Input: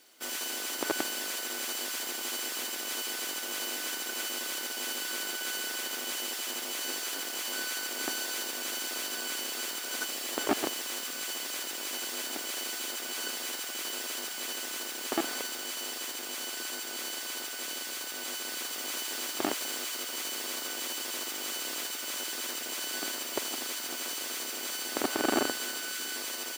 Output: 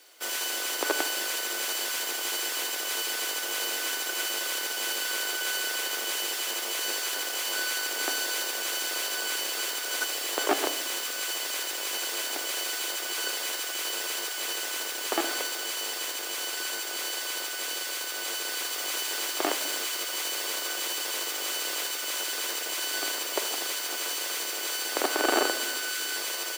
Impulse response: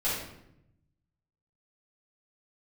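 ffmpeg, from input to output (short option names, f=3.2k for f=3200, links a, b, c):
-filter_complex "[0:a]highpass=f=350:w=0.5412,highpass=f=350:w=1.3066,asplit=2[a][b];[1:a]atrim=start_sample=2205,lowpass=5.6k[c];[b][c]afir=irnorm=-1:irlink=0,volume=-18dB[d];[a][d]amix=inputs=2:normalize=0,volume=4dB"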